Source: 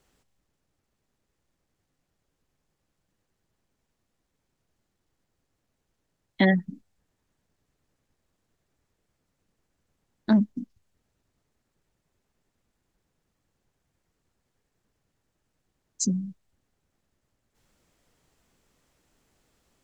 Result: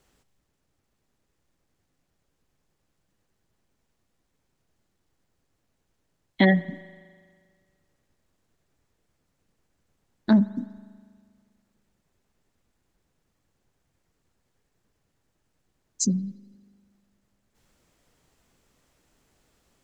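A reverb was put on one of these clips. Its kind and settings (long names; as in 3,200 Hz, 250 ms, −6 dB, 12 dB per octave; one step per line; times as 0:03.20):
spring reverb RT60 1.9 s, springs 40 ms, chirp 50 ms, DRR 17.5 dB
level +2 dB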